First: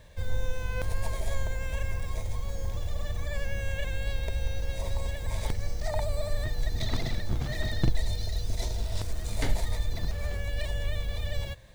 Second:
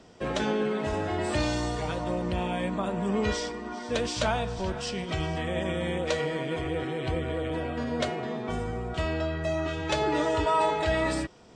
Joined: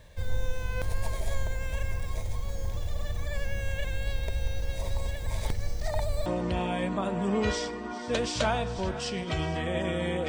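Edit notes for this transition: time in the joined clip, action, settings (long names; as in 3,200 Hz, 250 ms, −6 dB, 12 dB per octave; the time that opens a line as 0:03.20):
first
0:06.26: continue with second from 0:02.07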